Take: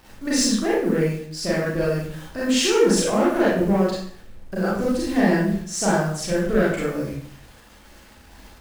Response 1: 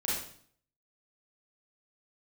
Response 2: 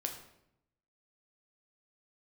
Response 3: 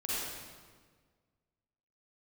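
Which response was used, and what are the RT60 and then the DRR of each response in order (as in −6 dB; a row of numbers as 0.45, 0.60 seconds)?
1; 0.55, 0.80, 1.6 seconds; −7.0, 2.5, −9.0 decibels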